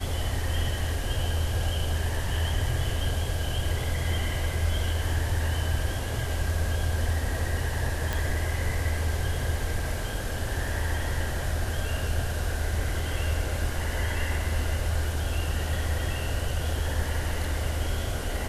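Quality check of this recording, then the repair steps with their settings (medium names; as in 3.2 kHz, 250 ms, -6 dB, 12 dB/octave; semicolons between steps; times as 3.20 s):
8.13 s: pop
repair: de-click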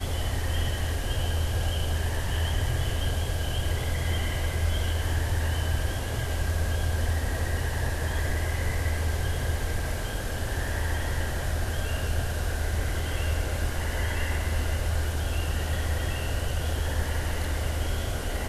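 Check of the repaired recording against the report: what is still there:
nothing left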